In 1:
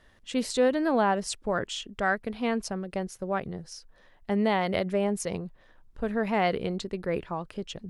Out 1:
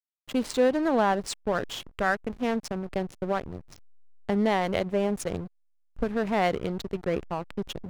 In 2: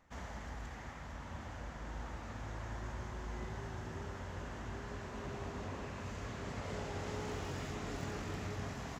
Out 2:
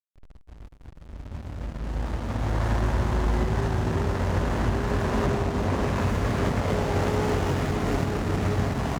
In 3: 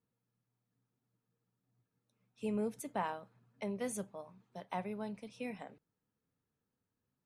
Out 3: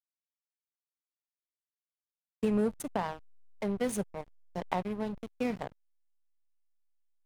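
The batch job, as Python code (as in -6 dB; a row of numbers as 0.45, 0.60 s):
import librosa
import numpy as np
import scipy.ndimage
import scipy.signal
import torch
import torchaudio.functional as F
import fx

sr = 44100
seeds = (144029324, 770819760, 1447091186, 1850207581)

y = fx.recorder_agc(x, sr, target_db=-18.0, rise_db_per_s=5.8, max_gain_db=30)
y = fx.backlash(y, sr, play_db=-29.5)
y = y * 10.0 ** (-12 / 20.0) / np.max(np.abs(y))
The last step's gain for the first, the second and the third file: +1.5, +4.5, -1.0 dB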